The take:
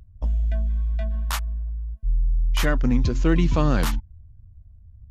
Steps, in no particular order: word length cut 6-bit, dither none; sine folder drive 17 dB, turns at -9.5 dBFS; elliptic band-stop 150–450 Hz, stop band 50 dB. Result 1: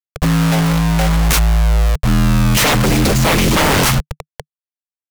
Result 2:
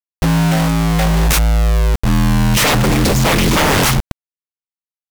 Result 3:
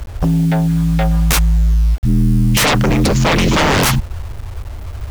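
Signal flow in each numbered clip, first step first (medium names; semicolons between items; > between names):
word length cut > elliptic band-stop > sine folder; elliptic band-stop > word length cut > sine folder; elliptic band-stop > sine folder > word length cut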